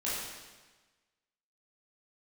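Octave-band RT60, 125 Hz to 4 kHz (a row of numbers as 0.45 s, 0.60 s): 1.3 s, 1.3 s, 1.3 s, 1.3 s, 1.3 s, 1.2 s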